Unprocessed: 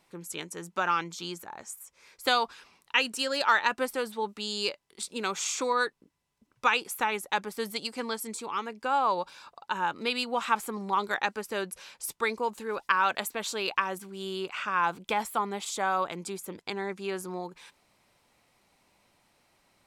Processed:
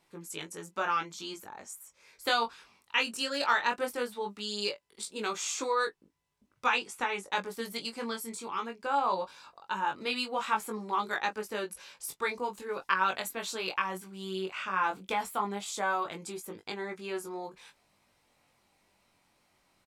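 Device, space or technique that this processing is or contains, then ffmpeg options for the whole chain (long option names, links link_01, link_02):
double-tracked vocal: -filter_complex "[0:a]asettb=1/sr,asplit=3[link_01][link_02][link_03];[link_01]atrim=end=6.674[link_04];[link_02]atrim=start=6.67:end=7.3,asetpts=PTS-STARTPTS,afade=type=in:duration=0.004:curve=qsin,afade=type=out:start_time=0.626:duration=0.004:curve=qsin,lowpass=frequency=9100:width=0.5412,lowpass=frequency=9100:width=1.3066[link_05];[link_03]atrim=start=7.296[link_06];[link_04][link_05]acrossfade=duration=0.004:curve1=hsin:curve2=qsin[link_07];[link_07][link_06]acrossfade=duration=0.004:curve1=qsin:curve2=hsin,asplit=2[link_08][link_09];[link_09]adelay=21,volume=-13dB[link_10];[link_08][link_10]amix=inputs=2:normalize=0,flanger=delay=18.5:depth=3.4:speed=0.18"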